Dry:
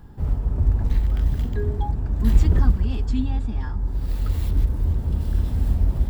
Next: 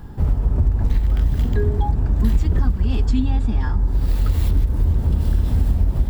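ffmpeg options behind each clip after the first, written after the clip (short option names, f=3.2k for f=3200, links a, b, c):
-af "acompressor=threshold=-21dB:ratio=6,volume=8dB"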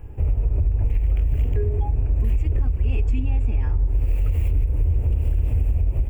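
-af "firequalizer=gain_entry='entry(110,0);entry(170,-16);entry(290,-6);entry(470,0);entry(920,-10);entry(1600,-12);entry(2500,5);entry(3700,-23);entry(7500,-9)':delay=0.05:min_phase=1,alimiter=limit=-13dB:level=0:latency=1:release=61"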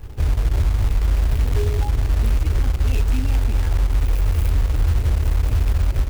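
-af "acrusher=bits=4:mode=log:mix=0:aa=0.000001,volume=2dB"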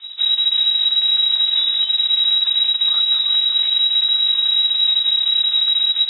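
-af "lowpass=f=3.3k:t=q:w=0.5098,lowpass=f=3.3k:t=q:w=0.6013,lowpass=f=3.3k:t=q:w=0.9,lowpass=f=3.3k:t=q:w=2.563,afreqshift=-3900"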